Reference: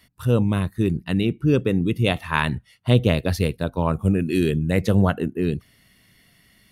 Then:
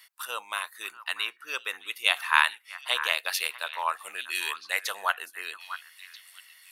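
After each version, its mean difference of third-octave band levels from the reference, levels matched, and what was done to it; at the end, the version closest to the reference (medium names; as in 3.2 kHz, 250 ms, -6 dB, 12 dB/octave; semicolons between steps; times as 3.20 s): 19.0 dB: high-pass 980 Hz 24 dB/octave; treble shelf 9.4 kHz +4.5 dB; on a send: repeats whose band climbs or falls 642 ms, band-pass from 1.4 kHz, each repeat 1.4 oct, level -10 dB; on the sum: trim +3 dB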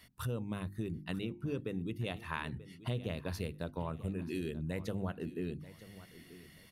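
4.0 dB: hum notches 50/100/150/200/250/300/350 Hz; compression 4:1, threshold -35 dBFS, peak gain reduction 19 dB; on a send: feedback delay 935 ms, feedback 30%, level -16.5 dB; on the sum: trim -2.5 dB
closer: second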